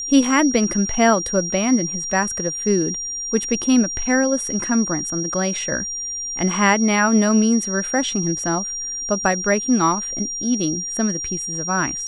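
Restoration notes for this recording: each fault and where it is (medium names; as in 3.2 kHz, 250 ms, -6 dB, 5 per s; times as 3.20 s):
whine 5.7 kHz -25 dBFS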